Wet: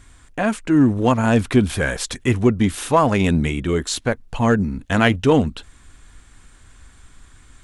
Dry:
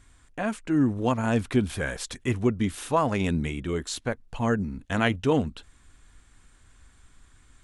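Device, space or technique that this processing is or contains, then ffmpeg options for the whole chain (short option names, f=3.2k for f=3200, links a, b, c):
parallel distortion: -filter_complex "[0:a]asplit=2[a][b];[b]asoftclip=type=hard:threshold=-23dB,volume=-11dB[c];[a][c]amix=inputs=2:normalize=0,volume=6.5dB"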